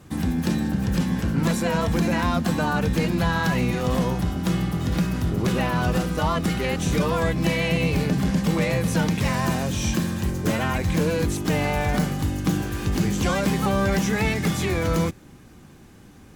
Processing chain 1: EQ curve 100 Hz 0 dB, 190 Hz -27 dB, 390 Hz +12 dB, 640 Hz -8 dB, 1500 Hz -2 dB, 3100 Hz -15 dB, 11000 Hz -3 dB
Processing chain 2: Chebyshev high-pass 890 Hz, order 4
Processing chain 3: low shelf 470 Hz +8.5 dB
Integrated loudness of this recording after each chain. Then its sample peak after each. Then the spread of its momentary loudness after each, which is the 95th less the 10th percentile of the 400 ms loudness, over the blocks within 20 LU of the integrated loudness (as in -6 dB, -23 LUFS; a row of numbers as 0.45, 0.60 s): -25.0, -31.0, -17.0 LUFS; -9.5, -15.0, -4.5 dBFS; 7, 9, 2 LU